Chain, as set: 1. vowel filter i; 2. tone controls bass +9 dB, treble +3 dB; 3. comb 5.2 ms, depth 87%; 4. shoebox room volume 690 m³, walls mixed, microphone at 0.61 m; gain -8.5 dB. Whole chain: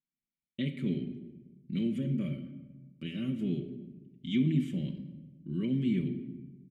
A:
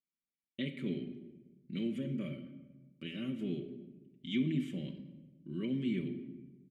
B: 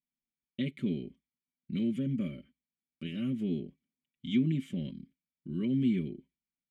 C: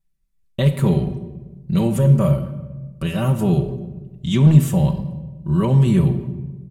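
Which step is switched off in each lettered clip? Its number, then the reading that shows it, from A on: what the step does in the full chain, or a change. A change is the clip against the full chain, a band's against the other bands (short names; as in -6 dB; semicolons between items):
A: 2, 125 Hz band -6.5 dB; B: 4, echo-to-direct -7.5 dB to none; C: 1, 125 Hz band +8.0 dB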